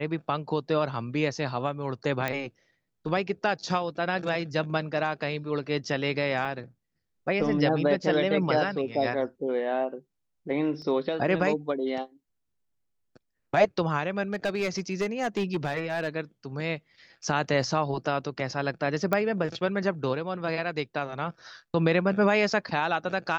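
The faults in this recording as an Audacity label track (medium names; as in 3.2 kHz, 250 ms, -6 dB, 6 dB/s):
2.280000	2.280000	pop -14 dBFS
6.450000	6.450000	dropout 4.9 ms
10.820000	10.820000	dropout 2.9 ms
14.330000	16.080000	clipped -22 dBFS
19.130000	19.130000	pop -12 dBFS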